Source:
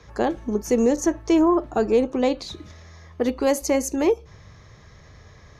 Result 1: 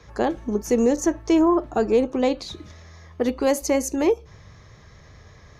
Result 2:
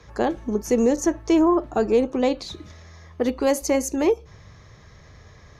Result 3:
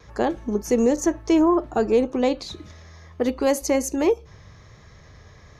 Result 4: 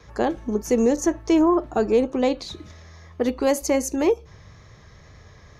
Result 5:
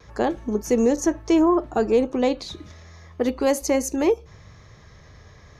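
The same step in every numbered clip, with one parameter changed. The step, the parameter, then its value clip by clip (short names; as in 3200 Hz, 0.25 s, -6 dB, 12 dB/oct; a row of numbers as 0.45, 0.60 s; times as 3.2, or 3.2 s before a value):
vibrato, rate: 5.1, 15, 1.3, 2, 0.73 Hz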